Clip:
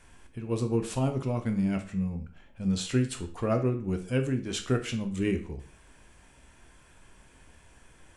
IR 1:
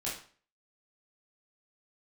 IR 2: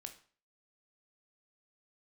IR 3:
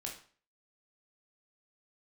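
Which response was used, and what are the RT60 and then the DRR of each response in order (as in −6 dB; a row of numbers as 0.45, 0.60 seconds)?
2; 0.45, 0.45, 0.45 seconds; −7.5, 6.0, −1.0 decibels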